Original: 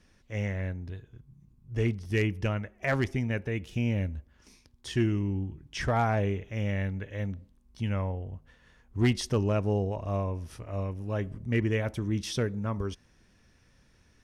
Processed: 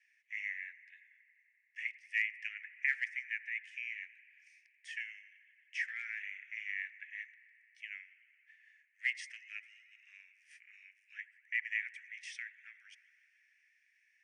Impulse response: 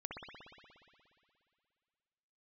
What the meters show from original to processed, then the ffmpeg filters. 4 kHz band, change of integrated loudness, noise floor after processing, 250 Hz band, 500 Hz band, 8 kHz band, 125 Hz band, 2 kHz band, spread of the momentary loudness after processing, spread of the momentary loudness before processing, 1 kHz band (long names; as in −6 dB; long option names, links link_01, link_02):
−11.0 dB, −9.0 dB, −73 dBFS, below −40 dB, below −40 dB, −14.0 dB, below −40 dB, +1.0 dB, 23 LU, 11 LU, below −30 dB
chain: -filter_complex "[0:a]asuperpass=centerf=4300:order=20:qfactor=0.55,highshelf=frequency=2900:width_type=q:width=3:gain=-9,asplit=2[link_01][link_02];[1:a]atrim=start_sample=2205,asetrate=33516,aresample=44100[link_03];[link_02][link_03]afir=irnorm=-1:irlink=0,volume=-14dB[link_04];[link_01][link_04]amix=inputs=2:normalize=0,volume=-4dB"